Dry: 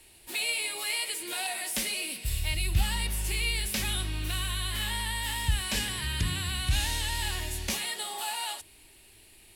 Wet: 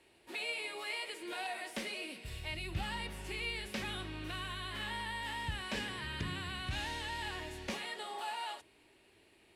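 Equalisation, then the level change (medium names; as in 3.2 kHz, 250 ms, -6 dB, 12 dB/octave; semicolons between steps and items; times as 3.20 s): band-pass filter 610 Hz, Q 0.55; peaking EQ 790 Hz -3.5 dB 0.63 oct; 0.0 dB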